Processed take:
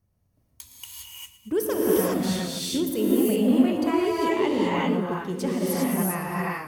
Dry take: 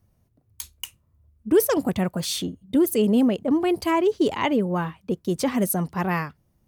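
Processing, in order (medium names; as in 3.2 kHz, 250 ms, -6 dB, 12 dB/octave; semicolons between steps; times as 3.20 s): on a send: thinning echo 114 ms, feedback 65%, level -15 dB; on the sum: gated-style reverb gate 430 ms rising, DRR -6 dB; trim -8 dB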